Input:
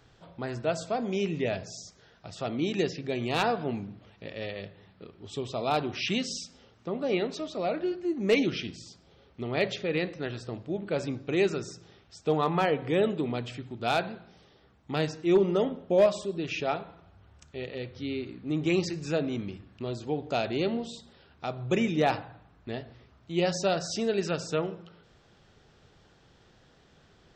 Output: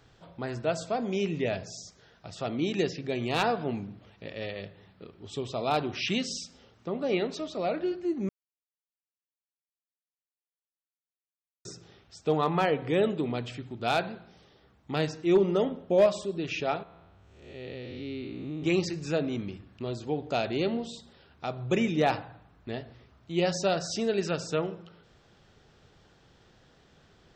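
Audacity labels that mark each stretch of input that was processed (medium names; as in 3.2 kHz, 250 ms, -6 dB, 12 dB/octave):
8.290000	11.650000	mute
16.830000	18.630000	spectral blur width 281 ms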